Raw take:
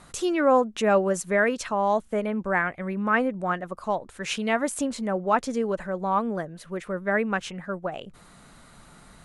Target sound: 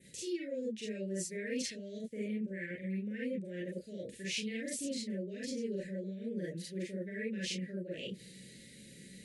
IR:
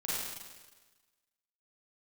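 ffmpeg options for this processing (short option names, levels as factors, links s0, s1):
-filter_complex "[1:a]atrim=start_sample=2205,atrim=end_sample=3969,asetrate=48510,aresample=44100[s0];[0:a][s0]afir=irnorm=-1:irlink=0,areverse,acompressor=threshold=0.0224:ratio=6,areverse,asuperstop=centerf=990:order=12:qfactor=0.79,adynamicequalizer=threshold=0.00112:dfrequency=4700:dqfactor=2.1:tfrequency=4700:tqfactor=2.1:attack=5:release=100:ratio=0.375:range=3.5:mode=boostabove:tftype=bell,highpass=98,volume=0.841"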